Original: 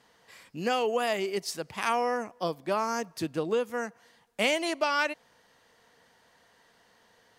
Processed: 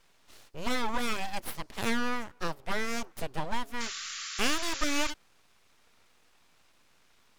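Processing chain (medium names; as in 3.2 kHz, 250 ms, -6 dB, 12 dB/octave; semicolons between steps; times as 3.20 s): full-wave rectifier; painted sound noise, 3.80–5.11 s, 1.1–7.4 kHz -39 dBFS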